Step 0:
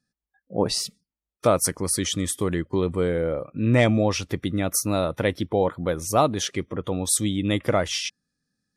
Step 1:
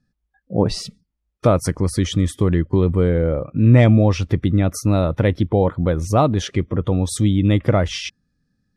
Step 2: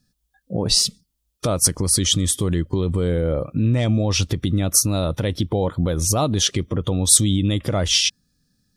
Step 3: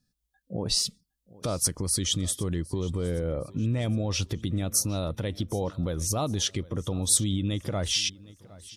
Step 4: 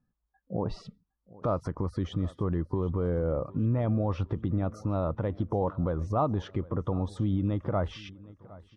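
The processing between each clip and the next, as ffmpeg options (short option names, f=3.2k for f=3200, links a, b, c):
-filter_complex "[0:a]aemphasis=mode=reproduction:type=bsi,asplit=2[a][b];[b]acompressor=threshold=-23dB:ratio=6,volume=-3dB[c];[a][c]amix=inputs=2:normalize=0"
-af "alimiter=limit=-12.5dB:level=0:latency=1:release=103,aexciter=amount=4.2:drive=4.3:freq=3k,volume=1dB"
-af "aecho=1:1:762|1524|2286:0.0891|0.0383|0.0165,volume=-8.5dB"
-af "lowpass=f=1.1k:t=q:w=2.1"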